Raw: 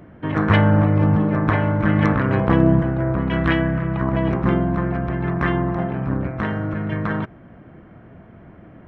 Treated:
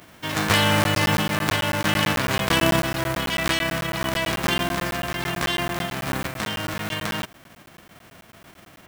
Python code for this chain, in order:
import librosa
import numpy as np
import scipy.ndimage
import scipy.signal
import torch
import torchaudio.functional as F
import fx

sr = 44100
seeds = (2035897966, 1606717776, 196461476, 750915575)

y = fx.envelope_flatten(x, sr, power=0.3)
y = fx.buffer_crackle(y, sr, first_s=0.84, period_s=0.11, block=512, kind='zero')
y = F.gain(torch.from_numpy(y), -4.5).numpy()